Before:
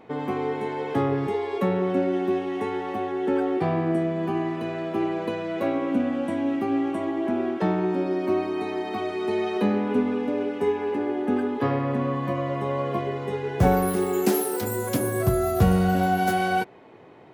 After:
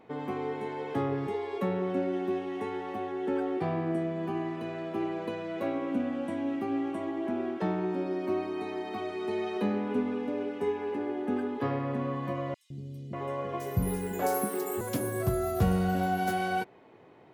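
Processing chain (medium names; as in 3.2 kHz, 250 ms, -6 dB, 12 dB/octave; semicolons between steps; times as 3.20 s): 12.54–14.81 s: three bands offset in time highs, lows, mids 160/590 ms, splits 270/4300 Hz; trim -6.5 dB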